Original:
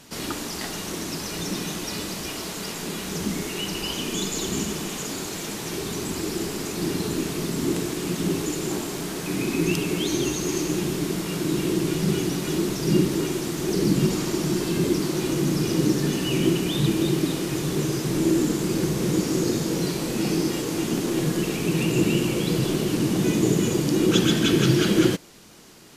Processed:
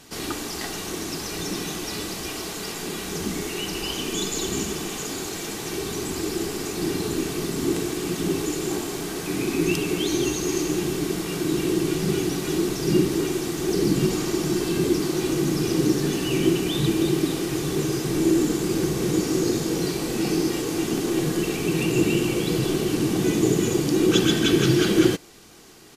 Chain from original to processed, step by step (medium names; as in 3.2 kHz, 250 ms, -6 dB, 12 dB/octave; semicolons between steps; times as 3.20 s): comb 2.6 ms, depth 30%